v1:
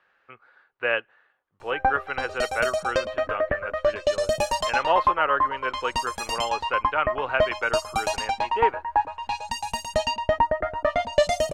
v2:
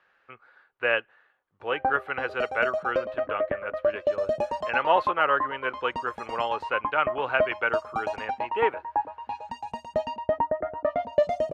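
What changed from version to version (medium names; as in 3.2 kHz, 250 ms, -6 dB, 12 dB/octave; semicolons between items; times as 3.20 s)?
background: add band-pass filter 360 Hz, Q 0.7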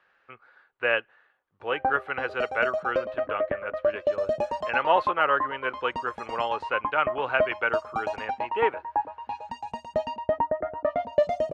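master: add low-pass 10 kHz 12 dB/octave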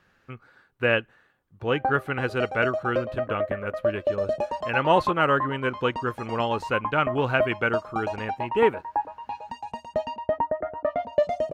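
speech: remove three-band isolator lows -20 dB, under 450 Hz, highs -16 dB, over 3.6 kHz; master: remove low-pass 10 kHz 12 dB/octave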